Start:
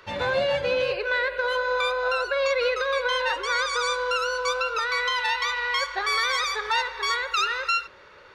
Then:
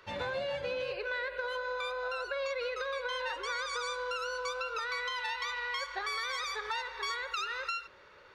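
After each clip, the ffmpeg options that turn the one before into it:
ffmpeg -i in.wav -af "acompressor=threshold=-25dB:ratio=6,volume=-7dB" out.wav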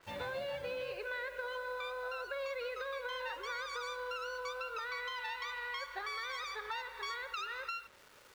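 ffmpeg -i in.wav -af "acrusher=bits=8:mix=0:aa=0.000001,adynamicequalizer=threshold=0.00316:dfrequency=4500:dqfactor=0.7:tfrequency=4500:tqfactor=0.7:attack=5:release=100:ratio=0.375:range=3:mode=cutabove:tftype=highshelf,volume=-4.5dB" out.wav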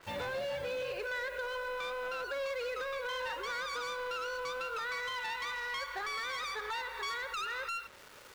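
ffmpeg -i in.wav -filter_complex "[0:a]asplit=2[link_01][link_02];[link_02]alimiter=level_in=14dB:limit=-24dB:level=0:latency=1,volume=-14dB,volume=-2dB[link_03];[link_01][link_03]amix=inputs=2:normalize=0,asoftclip=type=hard:threshold=-34dB,volume=1dB" out.wav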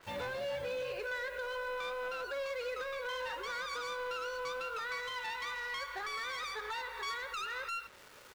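ffmpeg -i in.wav -filter_complex "[0:a]asplit=2[link_01][link_02];[link_02]adelay=16,volume=-12.5dB[link_03];[link_01][link_03]amix=inputs=2:normalize=0,volume=-2dB" out.wav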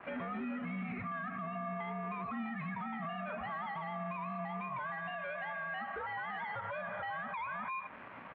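ffmpeg -i in.wav -af "highpass=frequency=340:width_type=q:width=0.5412,highpass=frequency=340:width_type=q:width=1.307,lowpass=frequency=2700:width_type=q:width=0.5176,lowpass=frequency=2700:width_type=q:width=0.7071,lowpass=frequency=2700:width_type=q:width=1.932,afreqshift=-320,highpass=frequency=220:poles=1,alimiter=level_in=17.5dB:limit=-24dB:level=0:latency=1:release=147,volume=-17.5dB,volume=9dB" out.wav

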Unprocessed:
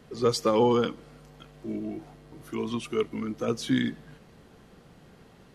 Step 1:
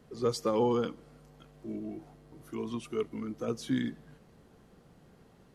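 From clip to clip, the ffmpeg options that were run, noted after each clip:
ffmpeg -i in.wav -af "equalizer=frequency=2800:width_type=o:width=2.1:gain=-4.5,volume=-5dB" out.wav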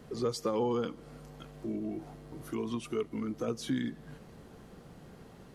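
ffmpeg -i in.wav -af "acompressor=threshold=-43dB:ratio=2,volume=7dB" out.wav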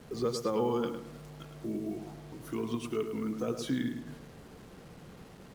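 ffmpeg -i in.wav -filter_complex "[0:a]asplit=2[link_01][link_02];[link_02]adelay=106,lowpass=frequency=2700:poles=1,volume=-7dB,asplit=2[link_03][link_04];[link_04]adelay=106,lowpass=frequency=2700:poles=1,volume=0.38,asplit=2[link_05][link_06];[link_06]adelay=106,lowpass=frequency=2700:poles=1,volume=0.38,asplit=2[link_07][link_08];[link_08]adelay=106,lowpass=frequency=2700:poles=1,volume=0.38[link_09];[link_01][link_03][link_05][link_07][link_09]amix=inputs=5:normalize=0,acrusher=bits=8:mix=0:aa=0.5" out.wav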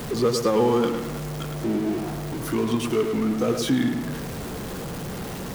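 ffmpeg -i in.wav -af "aeval=exprs='val(0)+0.5*0.015*sgn(val(0))':channel_layout=same,volume=8.5dB" out.wav

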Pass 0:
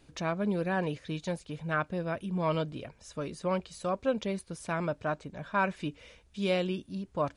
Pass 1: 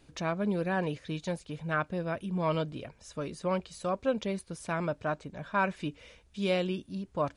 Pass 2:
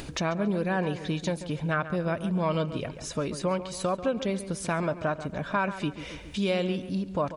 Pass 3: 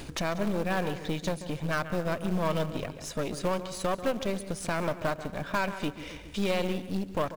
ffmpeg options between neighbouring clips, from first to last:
ffmpeg -i in.wav -af anull out.wav
ffmpeg -i in.wav -filter_complex "[0:a]acompressor=threshold=-36dB:ratio=2.5,asplit=2[link_01][link_02];[link_02]adelay=139,lowpass=frequency=2900:poles=1,volume=-12dB,asplit=2[link_03][link_04];[link_04]adelay=139,lowpass=frequency=2900:poles=1,volume=0.44,asplit=2[link_05][link_06];[link_06]adelay=139,lowpass=frequency=2900:poles=1,volume=0.44,asplit=2[link_07][link_08];[link_08]adelay=139,lowpass=frequency=2900:poles=1,volume=0.44[link_09];[link_03][link_05][link_07][link_09]amix=inputs=4:normalize=0[link_10];[link_01][link_10]amix=inputs=2:normalize=0,acompressor=mode=upward:threshold=-40dB:ratio=2.5,volume=9dB" out.wav
ffmpeg -i in.wav -filter_complex "[0:a]asplit=2[link_01][link_02];[link_02]acrusher=bits=3:mode=log:mix=0:aa=0.000001,volume=-4dB[link_03];[link_01][link_03]amix=inputs=2:normalize=0,aeval=exprs='0.376*(cos(1*acos(clip(val(0)/0.376,-1,1)))-cos(1*PI/2))+0.0376*(cos(8*acos(clip(val(0)/0.376,-1,1)))-cos(8*PI/2))':channel_layout=same,aecho=1:1:189:0.119,volume=-6.5dB" out.wav

